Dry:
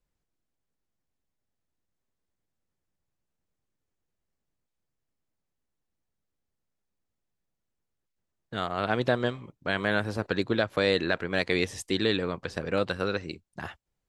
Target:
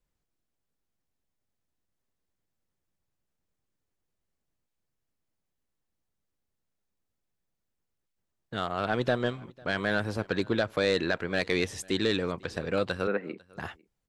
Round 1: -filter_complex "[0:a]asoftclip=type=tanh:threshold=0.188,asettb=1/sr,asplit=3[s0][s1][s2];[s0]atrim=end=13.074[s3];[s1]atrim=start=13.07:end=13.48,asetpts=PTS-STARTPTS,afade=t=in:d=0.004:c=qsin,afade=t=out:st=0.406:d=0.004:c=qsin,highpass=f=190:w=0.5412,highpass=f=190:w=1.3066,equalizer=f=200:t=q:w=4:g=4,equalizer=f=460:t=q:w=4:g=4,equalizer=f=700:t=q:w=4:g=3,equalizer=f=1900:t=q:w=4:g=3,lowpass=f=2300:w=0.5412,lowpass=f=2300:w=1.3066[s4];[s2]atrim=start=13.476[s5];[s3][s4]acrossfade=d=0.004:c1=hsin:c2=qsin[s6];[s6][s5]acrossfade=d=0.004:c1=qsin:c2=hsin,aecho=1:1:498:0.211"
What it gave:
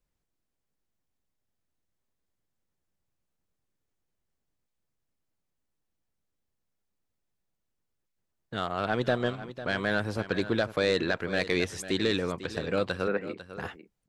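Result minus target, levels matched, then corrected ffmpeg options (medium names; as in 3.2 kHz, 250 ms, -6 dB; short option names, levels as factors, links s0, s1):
echo-to-direct +12 dB
-filter_complex "[0:a]asoftclip=type=tanh:threshold=0.188,asettb=1/sr,asplit=3[s0][s1][s2];[s0]atrim=end=13.074[s3];[s1]atrim=start=13.07:end=13.48,asetpts=PTS-STARTPTS,afade=t=in:d=0.004:c=qsin,afade=t=out:st=0.406:d=0.004:c=qsin,highpass=f=190:w=0.5412,highpass=f=190:w=1.3066,equalizer=f=200:t=q:w=4:g=4,equalizer=f=460:t=q:w=4:g=4,equalizer=f=700:t=q:w=4:g=3,equalizer=f=1900:t=q:w=4:g=3,lowpass=f=2300:w=0.5412,lowpass=f=2300:w=1.3066[s4];[s2]atrim=start=13.476[s5];[s3][s4]acrossfade=d=0.004:c1=hsin:c2=qsin[s6];[s6][s5]acrossfade=d=0.004:c1=qsin:c2=hsin,aecho=1:1:498:0.0531"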